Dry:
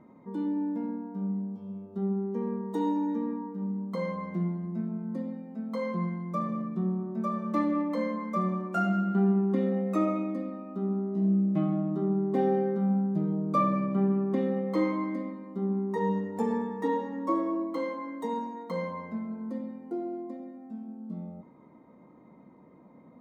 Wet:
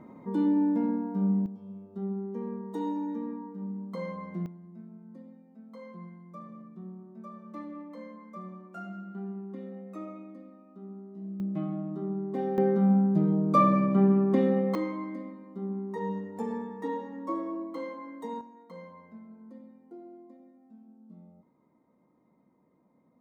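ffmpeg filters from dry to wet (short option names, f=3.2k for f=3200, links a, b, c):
-af "asetnsamples=n=441:p=0,asendcmd='1.46 volume volume -4dB;4.46 volume volume -14dB;11.4 volume volume -5.5dB;12.58 volume volume 4dB;14.75 volume volume -5dB;18.41 volume volume -13dB',volume=5.5dB"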